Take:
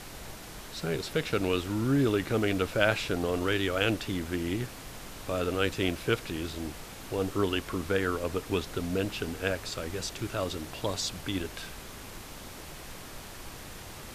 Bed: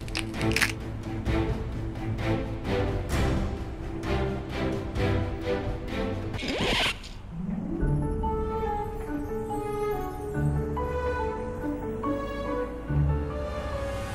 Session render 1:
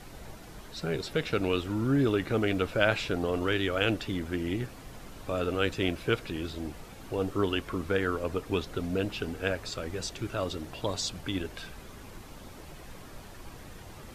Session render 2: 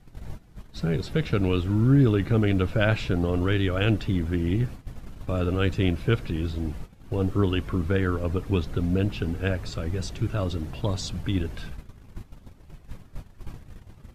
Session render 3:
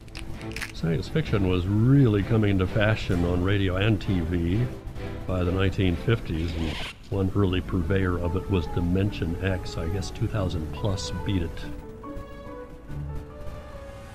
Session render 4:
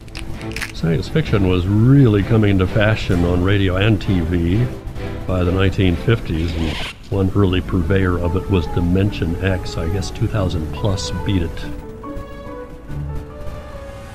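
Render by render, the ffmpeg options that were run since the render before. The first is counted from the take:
ffmpeg -i in.wav -af "afftdn=noise_reduction=8:noise_floor=-45" out.wav
ffmpeg -i in.wav -af "agate=range=-15dB:threshold=-43dB:ratio=16:detection=peak,bass=frequency=250:gain=12,treble=frequency=4000:gain=-3" out.wav
ffmpeg -i in.wav -i bed.wav -filter_complex "[1:a]volume=-9.5dB[link_01];[0:a][link_01]amix=inputs=2:normalize=0" out.wav
ffmpeg -i in.wav -af "volume=8dB,alimiter=limit=-3dB:level=0:latency=1" out.wav

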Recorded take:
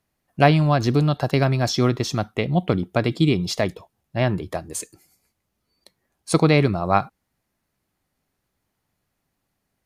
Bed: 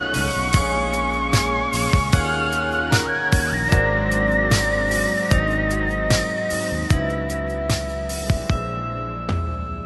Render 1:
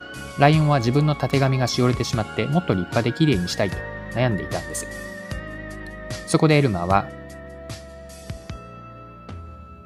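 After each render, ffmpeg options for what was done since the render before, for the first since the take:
ffmpeg -i in.wav -i bed.wav -filter_complex "[1:a]volume=-13.5dB[link_01];[0:a][link_01]amix=inputs=2:normalize=0" out.wav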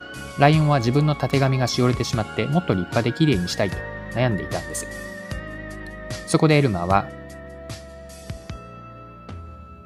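ffmpeg -i in.wav -af anull out.wav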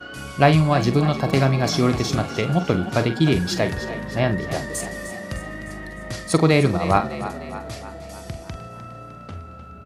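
ffmpeg -i in.wav -filter_complex "[0:a]asplit=2[link_01][link_02];[link_02]adelay=44,volume=-10.5dB[link_03];[link_01][link_03]amix=inputs=2:normalize=0,asplit=7[link_04][link_05][link_06][link_07][link_08][link_09][link_10];[link_05]adelay=304,afreqshift=32,volume=-12.5dB[link_11];[link_06]adelay=608,afreqshift=64,volume=-17.5dB[link_12];[link_07]adelay=912,afreqshift=96,volume=-22.6dB[link_13];[link_08]adelay=1216,afreqshift=128,volume=-27.6dB[link_14];[link_09]adelay=1520,afreqshift=160,volume=-32.6dB[link_15];[link_10]adelay=1824,afreqshift=192,volume=-37.7dB[link_16];[link_04][link_11][link_12][link_13][link_14][link_15][link_16]amix=inputs=7:normalize=0" out.wav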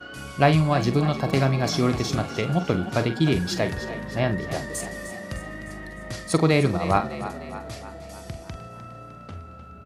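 ffmpeg -i in.wav -af "volume=-3dB" out.wav

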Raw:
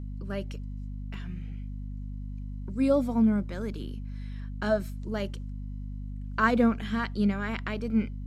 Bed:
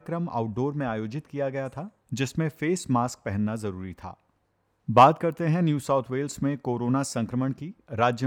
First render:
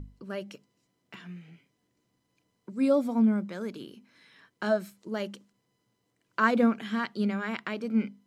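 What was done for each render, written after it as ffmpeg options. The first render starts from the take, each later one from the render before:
ffmpeg -i in.wav -af "bandreject=frequency=50:width_type=h:width=6,bandreject=frequency=100:width_type=h:width=6,bandreject=frequency=150:width_type=h:width=6,bandreject=frequency=200:width_type=h:width=6,bandreject=frequency=250:width_type=h:width=6" out.wav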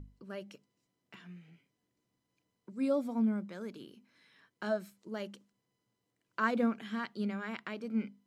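ffmpeg -i in.wav -af "volume=-7dB" out.wav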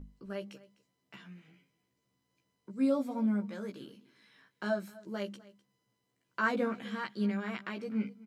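ffmpeg -i in.wav -filter_complex "[0:a]asplit=2[link_01][link_02];[link_02]adelay=15,volume=-3dB[link_03];[link_01][link_03]amix=inputs=2:normalize=0,aecho=1:1:253:0.0944" out.wav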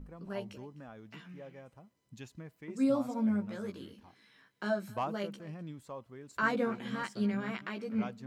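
ffmpeg -i in.wav -i bed.wav -filter_complex "[1:a]volume=-20.5dB[link_01];[0:a][link_01]amix=inputs=2:normalize=0" out.wav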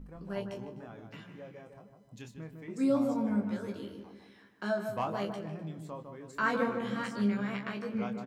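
ffmpeg -i in.wav -filter_complex "[0:a]asplit=2[link_01][link_02];[link_02]adelay=25,volume=-7dB[link_03];[link_01][link_03]amix=inputs=2:normalize=0,asplit=2[link_04][link_05];[link_05]adelay=154,lowpass=frequency=1300:poles=1,volume=-5dB,asplit=2[link_06][link_07];[link_07]adelay=154,lowpass=frequency=1300:poles=1,volume=0.51,asplit=2[link_08][link_09];[link_09]adelay=154,lowpass=frequency=1300:poles=1,volume=0.51,asplit=2[link_10][link_11];[link_11]adelay=154,lowpass=frequency=1300:poles=1,volume=0.51,asplit=2[link_12][link_13];[link_13]adelay=154,lowpass=frequency=1300:poles=1,volume=0.51,asplit=2[link_14][link_15];[link_15]adelay=154,lowpass=frequency=1300:poles=1,volume=0.51[link_16];[link_04][link_06][link_08][link_10][link_12][link_14][link_16]amix=inputs=7:normalize=0" out.wav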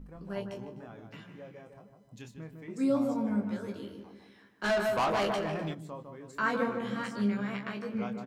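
ffmpeg -i in.wav -filter_complex "[0:a]asplit=3[link_01][link_02][link_03];[link_01]afade=type=out:start_time=4.63:duration=0.02[link_04];[link_02]asplit=2[link_05][link_06];[link_06]highpass=frequency=720:poles=1,volume=22dB,asoftclip=type=tanh:threshold=-21dB[link_07];[link_05][link_07]amix=inputs=2:normalize=0,lowpass=frequency=6800:poles=1,volume=-6dB,afade=type=in:start_time=4.63:duration=0.02,afade=type=out:start_time=5.73:duration=0.02[link_08];[link_03]afade=type=in:start_time=5.73:duration=0.02[link_09];[link_04][link_08][link_09]amix=inputs=3:normalize=0" out.wav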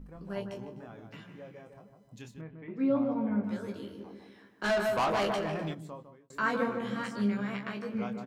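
ffmpeg -i in.wav -filter_complex "[0:a]asettb=1/sr,asplit=3[link_01][link_02][link_03];[link_01]atrim=end=2.414[link_04];[link_02]atrim=start=2.41:end=3.44,asetpts=PTS-STARTPTS,afade=type=in:duration=0.004:curve=qsin,afade=type=out:start_time=1.026:duration=0.004:curve=qsin,lowpass=frequency=3000:width=0.5412,lowpass=frequency=3000:width=1.3066[link_05];[link_03]atrim=start=3.436[link_06];[link_04][link_05]acrossfade=duration=0.004:curve1=hsin:curve2=qsin[link_07];[link_07][link_06]acrossfade=duration=0.004:curve1=qsin:curve2=hsin,asettb=1/sr,asplit=3[link_08][link_09][link_10];[link_08]atrim=end=4.004[link_11];[link_09]atrim=start=4:end=4.63,asetpts=PTS-STARTPTS,afade=type=in:duration=0.004:curve=qsin,afade=type=out:start_time=0.626:duration=0.004:curve=qsin,equalizer=frequency=400:width_type=o:width=2.4:gain=5[link_12];[link_10]atrim=start=4.626[link_13];[link_11][link_12]acrossfade=duration=0.004:curve1=hsin:curve2=qsin[link_14];[link_14][link_13]acrossfade=duration=0.004:curve1=qsin:curve2=hsin,asplit=2[link_15][link_16];[link_15]atrim=end=6.3,asetpts=PTS-STARTPTS,afade=type=out:start_time=5.86:duration=0.44[link_17];[link_16]atrim=start=6.3,asetpts=PTS-STARTPTS,afade=type=in:duration=0.004:curve=hsin[link_18];[link_17][link_18]concat=n=2:v=0:a=1" out.wav

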